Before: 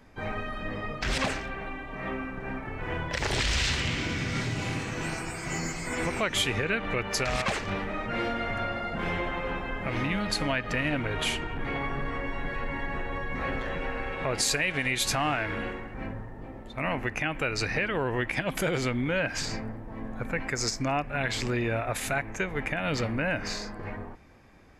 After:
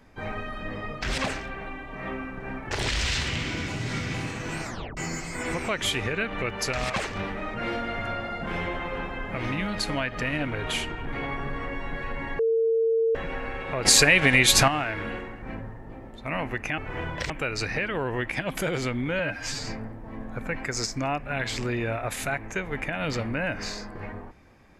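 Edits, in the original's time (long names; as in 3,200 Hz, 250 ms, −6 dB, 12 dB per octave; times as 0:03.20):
0:02.71–0:03.23: move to 0:17.30
0:04.20–0:04.66: reverse
0:05.16: tape stop 0.33 s
0:12.91–0:13.67: beep over 453 Hz −19.5 dBFS
0:14.37–0:15.20: clip gain +9.5 dB
0:19.19–0:19.51: time-stretch 1.5×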